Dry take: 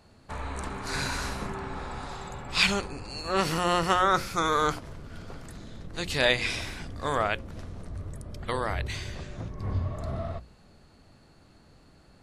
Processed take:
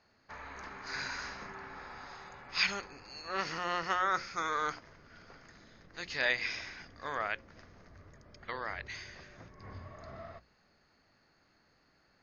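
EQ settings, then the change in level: rippled Chebyshev low-pass 6700 Hz, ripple 9 dB; low shelf 180 Hz -10 dB; -2.5 dB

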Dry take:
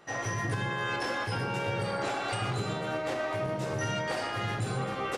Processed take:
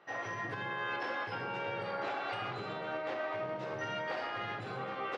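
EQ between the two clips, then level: HPF 540 Hz 6 dB/oct; air absorption 250 m; -1.5 dB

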